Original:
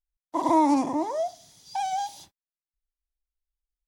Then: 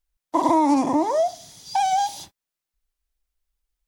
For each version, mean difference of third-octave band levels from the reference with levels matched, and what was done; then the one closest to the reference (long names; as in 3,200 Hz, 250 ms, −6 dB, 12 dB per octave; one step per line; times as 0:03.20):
3.0 dB: downward compressor 3 to 1, threshold −26 dBFS, peak gain reduction 8 dB
level +9 dB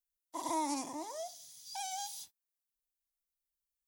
7.0 dB: first-order pre-emphasis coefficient 0.9
level +2.5 dB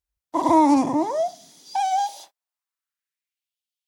1.5 dB: high-pass filter sweep 63 Hz → 3,100 Hz, 0:00.41–0:03.57
level +4 dB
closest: third